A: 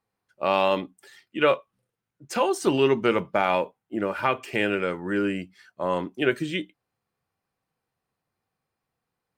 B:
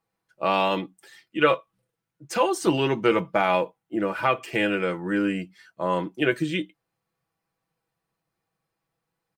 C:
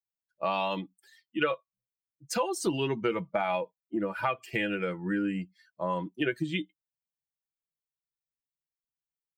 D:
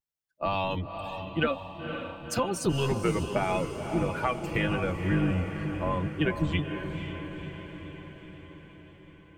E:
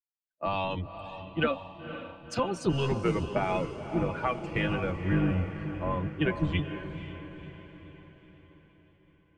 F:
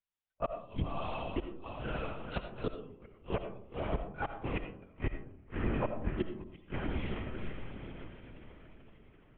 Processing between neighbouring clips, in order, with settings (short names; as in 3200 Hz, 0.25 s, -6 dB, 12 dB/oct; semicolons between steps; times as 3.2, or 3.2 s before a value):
comb 6.1 ms, depth 51%
per-bin expansion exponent 1.5; compressor 3:1, threshold -30 dBFS, peak gain reduction 11.5 dB; gain +2.5 dB
octaver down 1 oct, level +3 dB; vibrato 0.87 Hz 56 cents; diffused feedback echo 0.511 s, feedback 62%, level -7.5 dB
air absorption 91 m; three-band expander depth 40%; gain -1 dB
flipped gate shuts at -21 dBFS, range -36 dB; LPC vocoder at 8 kHz whisper; reverb RT60 0.60 s, pre-delay 40 ms, DRR 7.5 dB; gain +2.5 dB